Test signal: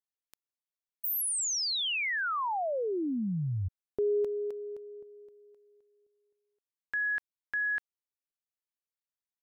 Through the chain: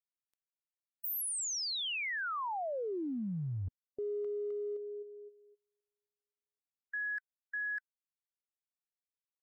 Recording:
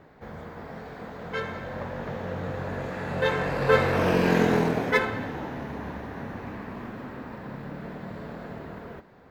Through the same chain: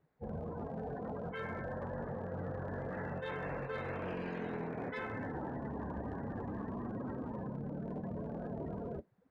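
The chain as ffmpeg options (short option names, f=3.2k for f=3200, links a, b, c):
-af "afftdn=nr=29:nf=-37,areverse,acompressor=threshold=-38dB:ratio=10:attack=0.1:release=75:knee=1:detection=rms,areverse,volume=3.5dB"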